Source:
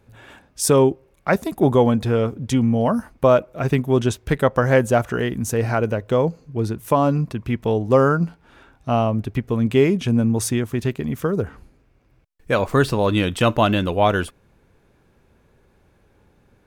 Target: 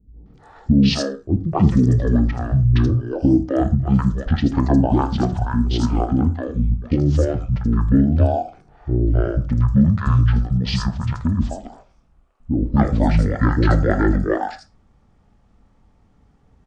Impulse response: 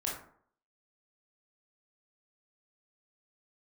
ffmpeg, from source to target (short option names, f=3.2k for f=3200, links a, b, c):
-filter_complex "[0:a]asetrate=22696,aresample=44100,atempo=1.94306,acrossover=split=370|5100[a][b][c];[b]adelay=260[d];[c]adelay=340[e];[a][d][e]amix=inputs=3:normalize=0,asplit=2[f][g];[1:a]atrim=start_sample=2205,afade=t=out:st=0.17:d=0.01,atrim=end_sample=7938,lowshelf=f=190:g=6.5[h];[g][h]afir=irnorm=-1:irlink=0,volume=-11dB[i];[f][i]amix=inputs=2:normalize=0"